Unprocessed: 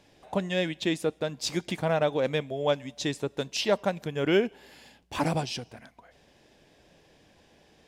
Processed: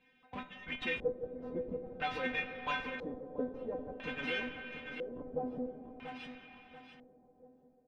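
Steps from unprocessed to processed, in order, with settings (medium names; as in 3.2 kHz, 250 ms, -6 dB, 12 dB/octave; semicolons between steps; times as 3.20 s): tracing distortion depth 0.16 ms; high-pass 41 Hz 6 dB/octave; band-stop 4.6 kHz, Q 16; harmonic-percussive split harmonic -13 dB; fifteen-band graphic EQ 160 Hz +10 dB, 630 Hz -4 dB, 1.6 kHz +5 dB; tremolo saw down 1.5 Hz, depth 95%; inharmonic resonator 250 Hz, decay 0.3 s, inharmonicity 0.002; in parallel at -3.5 dB: Schmitt trigger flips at -52.5 dBFS; on the sum: feedback delay 686 ms, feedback 33%, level -8 dB; on a send at -7 dB: reverberation RT60 4.5 s, pre-delay 30 ms; on the sum: LFO low-pass square 0.5 Hz 510–2600 Hz; trim +8.5 dB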